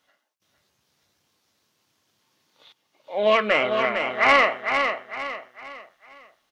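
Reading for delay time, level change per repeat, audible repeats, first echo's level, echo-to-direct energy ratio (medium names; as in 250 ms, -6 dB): 454 ms, -8.5 dB, 4, -6.0 dB, -5.5 dB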